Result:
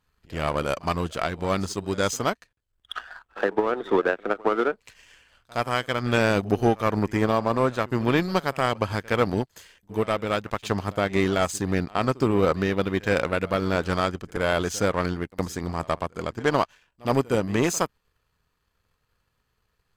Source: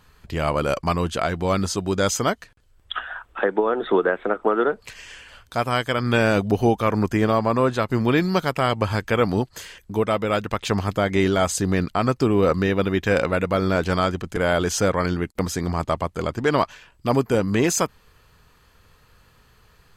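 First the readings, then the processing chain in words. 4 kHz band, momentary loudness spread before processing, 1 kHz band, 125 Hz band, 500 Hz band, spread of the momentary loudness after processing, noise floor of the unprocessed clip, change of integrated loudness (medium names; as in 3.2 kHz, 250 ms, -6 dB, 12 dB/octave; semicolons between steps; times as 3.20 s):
-3.0 dB, 8 LU, -2.5 dB, -4.0 dB, -3.0 dB, 8 LU, -57 dBFS, -3.0 dB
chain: pre-echo 67 ms -17 dB; power-law waveshaper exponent 1.4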